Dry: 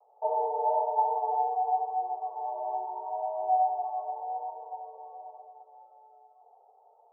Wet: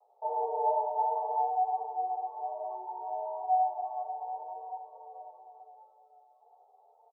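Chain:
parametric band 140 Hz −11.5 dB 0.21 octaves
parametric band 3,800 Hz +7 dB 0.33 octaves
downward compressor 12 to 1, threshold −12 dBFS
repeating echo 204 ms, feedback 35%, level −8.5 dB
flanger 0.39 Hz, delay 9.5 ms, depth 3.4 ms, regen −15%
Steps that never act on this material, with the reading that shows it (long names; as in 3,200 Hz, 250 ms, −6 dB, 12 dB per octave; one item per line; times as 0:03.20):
parametric band 140 Hz: nothing at its input below 360 Hz
parametric band 3,800 Hz: nothing at its input above 960 Hz
downward compressor, threshold −12 dBFS: peak of its input −15.0 dBFS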